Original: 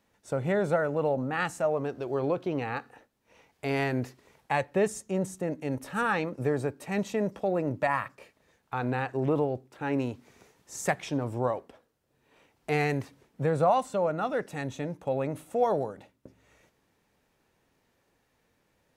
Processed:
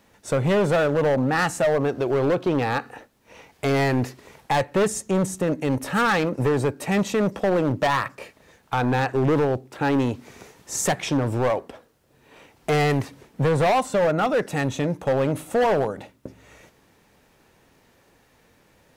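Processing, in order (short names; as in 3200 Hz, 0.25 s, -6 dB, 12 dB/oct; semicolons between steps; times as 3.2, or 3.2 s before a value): in parallel at -3 dB: compressor, threshold -36 dBFS, peak gain reduction 16.5 dB; on the sum: hard clip -24.5 dBFS, distortion -10 dB; gain +8 dB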